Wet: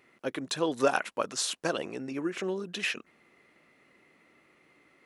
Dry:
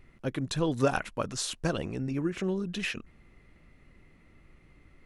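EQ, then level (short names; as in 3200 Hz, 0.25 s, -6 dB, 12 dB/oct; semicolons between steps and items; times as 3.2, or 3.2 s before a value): HPF 350 Hz 12 dB/oct; +2.5 dB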